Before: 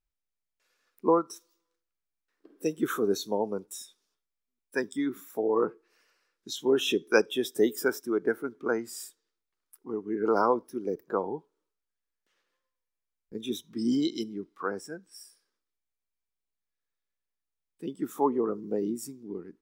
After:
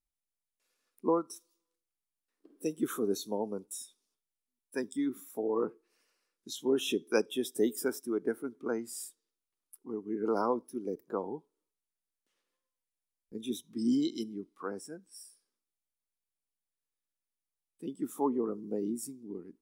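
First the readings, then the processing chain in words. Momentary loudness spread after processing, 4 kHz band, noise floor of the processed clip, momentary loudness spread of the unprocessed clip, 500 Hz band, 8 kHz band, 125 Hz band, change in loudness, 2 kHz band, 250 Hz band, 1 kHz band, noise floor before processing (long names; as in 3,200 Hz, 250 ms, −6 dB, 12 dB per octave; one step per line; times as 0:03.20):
14 LU, −5.5 dB, below −85 dBFS, 16 LU, −5.5 dB, −1.0 dB, −4.0 dB, −5.0 dB, −10.0 dB, −2.5 dB, −7.0 dB, below −85 dBFS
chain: graphic EQ with 15 bands 250 Hz +5 dB, 1,600 Hz −5 dB, 10,000 Hz +9 dB
level −6 dB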